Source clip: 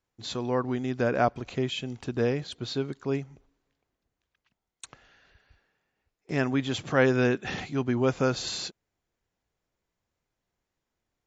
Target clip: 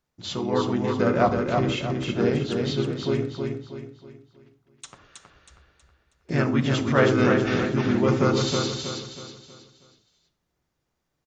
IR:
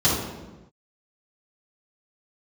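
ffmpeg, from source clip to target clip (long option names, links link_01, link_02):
-filter_complex "[0:a]asplit=2[link_01][link_02];[link_02]asetrate=37084,aresample=44100,atempo=1.18921,volume=-2dB[link_03];[link_01][link_03]amix=inputs=2:normalize=0,aecho=1:1:320|640|960|1280|1600:0.596|0.232|0.0906|0.0353|0.0138,asplit=2[link_04][link_05];[1:a]atrim=start_sample=2205,afade=type=out:start_time=0.18:duration=0.01,atrim=end_sample=8379[link_06];[link_05][link_06]afir=irnorm=-1:irlink=0,volume=-24dB[link_07];[link_04][link_07]amix=inputs=2:normalize=0"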